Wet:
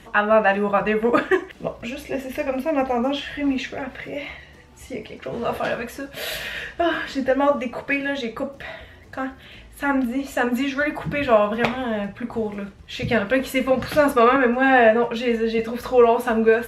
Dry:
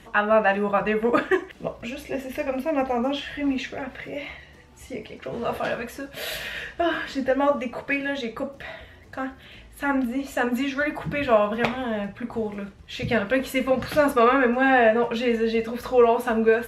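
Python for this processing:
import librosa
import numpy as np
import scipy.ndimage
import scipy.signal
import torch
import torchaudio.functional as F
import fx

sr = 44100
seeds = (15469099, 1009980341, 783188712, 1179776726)

y = fx.band_widen(x, sr, depth_pct=40, at=(14.36, 15.59))
y = F.gain(torch.from_numpy(y), 2.5).numpy()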